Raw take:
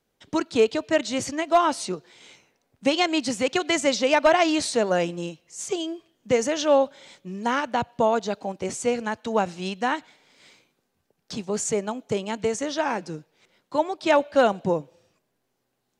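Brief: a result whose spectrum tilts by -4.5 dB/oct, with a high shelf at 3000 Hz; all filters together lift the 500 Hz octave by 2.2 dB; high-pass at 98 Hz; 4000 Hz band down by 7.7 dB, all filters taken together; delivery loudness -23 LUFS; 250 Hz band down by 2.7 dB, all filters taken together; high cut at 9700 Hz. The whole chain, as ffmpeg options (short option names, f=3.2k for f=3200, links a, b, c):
-af "highpass=98,lowpass=9.7k,equalizer=f=250:t=o:g=-5,equalizer=f=500:t=o:g=4,highshelf=f=3k:g=-4.5,equalizer=f=4k:t=o:g=-7.5,volume=0.5dB"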